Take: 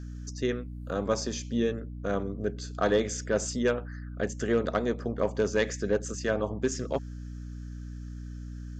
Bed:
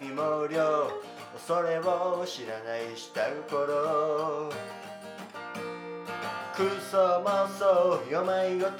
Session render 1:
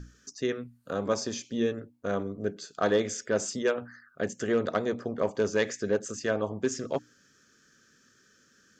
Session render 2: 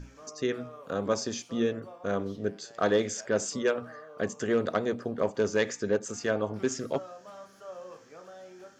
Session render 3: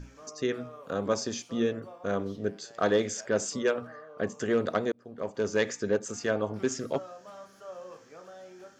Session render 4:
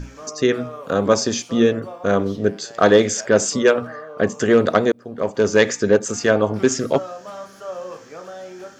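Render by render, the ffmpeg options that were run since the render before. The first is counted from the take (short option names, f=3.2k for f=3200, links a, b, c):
-af "bandreject=f=60:t=h:w=6,bandreject=f=120:t=h:w=6,bandreject=f=180:t=h:w=6,bandreject=f=240:t=h:w=6,bandreject=f=300:t=h:w=6"
-filter_complex "[1:a]volume=-20.5dB[a];[0:a][a]amix=inputs=2:normalize=0"
-filter_complex "[0:a]asettb=1/sr,asplit=3[a][b][c];[a]atrim=end=3.874[d];[b]atrim=start=3.87:end=4.34,asetpts=PTS-STARTPTS,afade=t=in:d=0.004:c=qsin,afade=t=out:st=0.466:d=0.004:c=qsin,highshelf=f=4.5k:g=-9.5[e];[c]atrim=start=4.336[f];[d][e]acrossfade=d=0.004:c1=hsin:c2=qsin[g];[g][f]acrossfade=d=0.004:c1=qsin:c2=hsin,asplit=2[h][i];[h]atrim=end=4.92,asetpts=PTS-STARTPTS,afade=t=out:st=4.916:d=0.004:c=hsin[j];[i]atrim=start=4.92,asetpts=PTS-STARTPTS,afade=t=in:d=0.67[k];[j][k]concat=n=2:v=0:a=1"
-af "volume=12dB"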